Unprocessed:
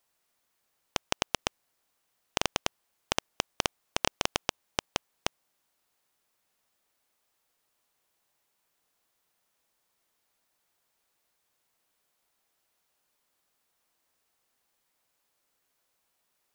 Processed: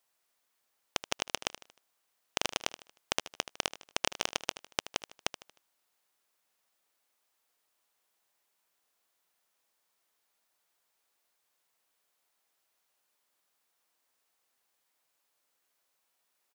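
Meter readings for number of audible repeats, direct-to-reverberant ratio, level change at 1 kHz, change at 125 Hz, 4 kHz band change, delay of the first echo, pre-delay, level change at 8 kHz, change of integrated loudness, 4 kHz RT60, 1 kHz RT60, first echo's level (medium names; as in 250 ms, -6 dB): 3, no reverb, -4.0 dB, -8.5 dB, -1.5 dB, 77 ms, no reverb, -1.5 dB, -2.0 dB, no reverb, no reverb, -14.0 dB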